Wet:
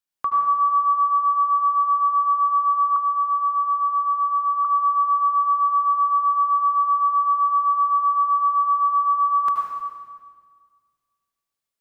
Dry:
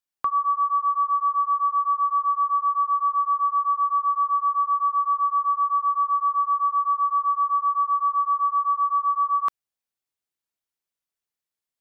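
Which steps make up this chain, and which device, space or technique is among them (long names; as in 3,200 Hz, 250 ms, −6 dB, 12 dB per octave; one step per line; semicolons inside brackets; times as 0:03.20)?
stairwell (convolution reverb RT60 1.7 s, pre-delay 72 ms, DRR −1 dB)
0:02.96–0:04.65: Butterworth high-pass 1,100 Hz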